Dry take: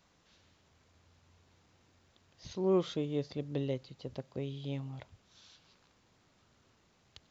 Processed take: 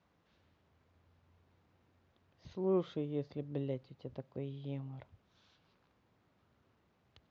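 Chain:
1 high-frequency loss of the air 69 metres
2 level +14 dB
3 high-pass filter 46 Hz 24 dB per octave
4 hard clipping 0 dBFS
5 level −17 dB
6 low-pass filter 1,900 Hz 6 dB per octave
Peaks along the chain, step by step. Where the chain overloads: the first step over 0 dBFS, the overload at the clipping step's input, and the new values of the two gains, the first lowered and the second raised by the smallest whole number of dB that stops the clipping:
−20.0, −6.0, −4.5, −4.5, −21.5, −22.0 dBFS
no step passes full scale

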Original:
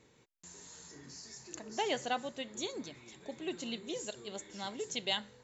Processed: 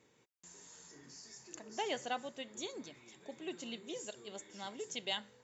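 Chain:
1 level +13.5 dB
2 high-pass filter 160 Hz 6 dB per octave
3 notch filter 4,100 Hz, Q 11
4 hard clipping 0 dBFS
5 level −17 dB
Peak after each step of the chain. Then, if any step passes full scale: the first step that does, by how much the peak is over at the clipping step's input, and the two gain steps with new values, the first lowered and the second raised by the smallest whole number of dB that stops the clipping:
−5.0, −5.5, −5.5, −5.5, −22.5 dBFS
no step passes full scale

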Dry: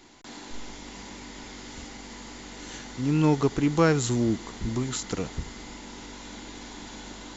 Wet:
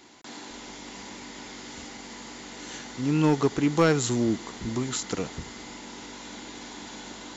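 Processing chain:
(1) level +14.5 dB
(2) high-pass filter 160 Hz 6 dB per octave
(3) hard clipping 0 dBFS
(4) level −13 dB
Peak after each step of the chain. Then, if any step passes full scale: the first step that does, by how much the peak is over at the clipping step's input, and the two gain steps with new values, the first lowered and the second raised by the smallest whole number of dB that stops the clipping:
+5.5, +5.5, 0.0, −13.0 dBFS
step 1, 5.5 dB
step 1 +8.5 dB, step 4 −7 dB

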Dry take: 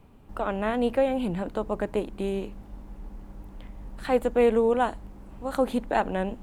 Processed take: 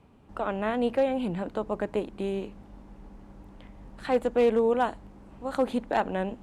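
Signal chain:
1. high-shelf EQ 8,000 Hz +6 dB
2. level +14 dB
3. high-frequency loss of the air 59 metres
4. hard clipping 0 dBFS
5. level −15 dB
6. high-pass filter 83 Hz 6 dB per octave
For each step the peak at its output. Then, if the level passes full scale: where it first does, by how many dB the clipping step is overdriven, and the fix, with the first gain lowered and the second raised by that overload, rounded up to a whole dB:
−9.5, +4.5, +4.5, 0.0, −15.0, −13.5 dBFS
step 2, 4.5 dB
step 2 +9 dB, step 5 −10 dB

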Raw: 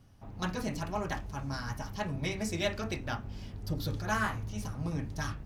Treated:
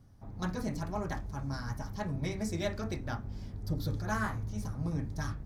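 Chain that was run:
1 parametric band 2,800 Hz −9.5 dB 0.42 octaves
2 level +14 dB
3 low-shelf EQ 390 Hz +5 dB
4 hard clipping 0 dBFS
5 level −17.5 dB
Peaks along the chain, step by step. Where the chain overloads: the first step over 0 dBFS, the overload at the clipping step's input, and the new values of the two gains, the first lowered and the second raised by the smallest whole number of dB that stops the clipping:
−18.0, −4.0, −2.5, −2.5, −20.0 dBFS
no step passes full scale

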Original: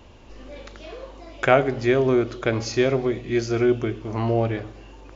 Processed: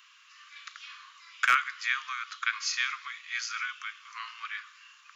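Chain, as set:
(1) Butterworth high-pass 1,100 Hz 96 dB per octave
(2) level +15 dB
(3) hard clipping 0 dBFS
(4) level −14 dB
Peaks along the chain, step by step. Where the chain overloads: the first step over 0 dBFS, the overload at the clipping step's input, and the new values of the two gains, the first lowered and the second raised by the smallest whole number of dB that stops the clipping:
−10.5, +4.5, 0.0, −14.0 dBFS
step 2, 4.5 dB
step 2 +10 dB, step 4 −9 dB

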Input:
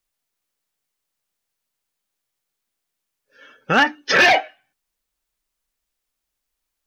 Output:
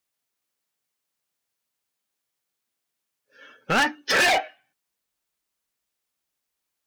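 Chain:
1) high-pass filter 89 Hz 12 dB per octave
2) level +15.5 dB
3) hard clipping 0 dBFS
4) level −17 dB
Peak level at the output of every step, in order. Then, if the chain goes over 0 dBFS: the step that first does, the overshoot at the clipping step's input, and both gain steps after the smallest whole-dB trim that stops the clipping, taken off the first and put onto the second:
−6.5, +9.0, 0.0, −17.0 dBFS
step 2, 9.0 dB
step 2 +6.5 dB, step 4 −8 dB

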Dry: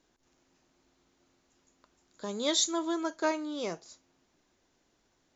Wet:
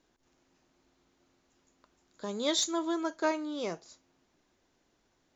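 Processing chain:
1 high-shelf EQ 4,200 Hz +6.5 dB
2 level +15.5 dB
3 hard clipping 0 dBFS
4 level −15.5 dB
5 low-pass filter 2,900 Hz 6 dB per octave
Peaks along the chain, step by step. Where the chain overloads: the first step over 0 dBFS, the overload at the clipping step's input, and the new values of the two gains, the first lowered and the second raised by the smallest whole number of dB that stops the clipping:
−10.5, +5.0, 0.0, −15.5, −17.0 dBFS
step 2, 5.0 dB
step 2 +10.5 dB, step 4 −10.5 dB

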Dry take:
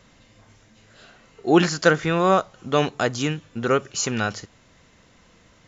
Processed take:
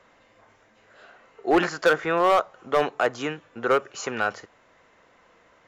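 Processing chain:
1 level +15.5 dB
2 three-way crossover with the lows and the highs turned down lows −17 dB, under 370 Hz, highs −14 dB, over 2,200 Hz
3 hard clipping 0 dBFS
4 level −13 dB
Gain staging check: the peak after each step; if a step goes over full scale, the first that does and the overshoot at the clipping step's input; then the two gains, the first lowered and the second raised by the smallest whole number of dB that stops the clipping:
+12.5, +9.5, 0.0, −13.0 dBFS
step 1, 9.5 dB
step 1 +5.5 dB, step 4 −3 dB

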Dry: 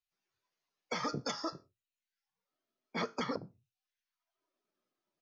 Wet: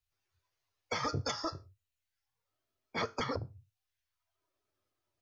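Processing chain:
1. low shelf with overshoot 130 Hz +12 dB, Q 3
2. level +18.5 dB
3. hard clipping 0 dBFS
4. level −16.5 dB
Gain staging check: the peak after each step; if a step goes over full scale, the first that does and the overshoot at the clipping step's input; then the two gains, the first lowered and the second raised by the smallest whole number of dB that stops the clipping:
−24.0, −5.5, −5.5, −22.0 dBFS
no step passes full scale

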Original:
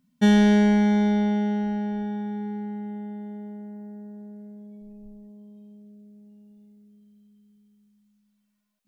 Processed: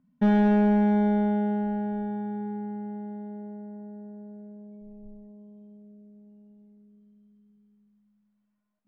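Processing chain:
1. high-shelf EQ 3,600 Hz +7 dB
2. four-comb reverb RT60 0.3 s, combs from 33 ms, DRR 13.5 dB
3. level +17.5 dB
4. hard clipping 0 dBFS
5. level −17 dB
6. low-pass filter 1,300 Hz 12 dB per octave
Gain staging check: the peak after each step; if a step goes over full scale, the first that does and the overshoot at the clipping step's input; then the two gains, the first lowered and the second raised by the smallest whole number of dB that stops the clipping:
−8.5, −8.5, +9.0, 0.0, −17.0, −16.5 dBFS
step 3, 9.0 dB
step 3 +8.5 dB, step 5 −8 dB

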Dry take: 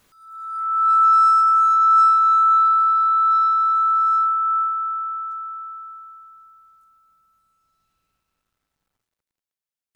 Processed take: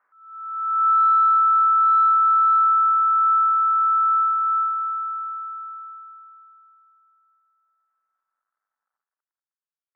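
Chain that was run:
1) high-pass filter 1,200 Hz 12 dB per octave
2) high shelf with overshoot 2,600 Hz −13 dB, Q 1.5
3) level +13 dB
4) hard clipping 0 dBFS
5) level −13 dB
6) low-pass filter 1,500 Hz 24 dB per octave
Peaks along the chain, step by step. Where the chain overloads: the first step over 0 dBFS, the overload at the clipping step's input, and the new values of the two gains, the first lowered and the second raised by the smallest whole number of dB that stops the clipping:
−11.5, −9.0, +4.0, 0.0, −13.0, −13.0 dBFS
step 3, 4.0 dB
step 3 +9 dB, step 5 −9 dB

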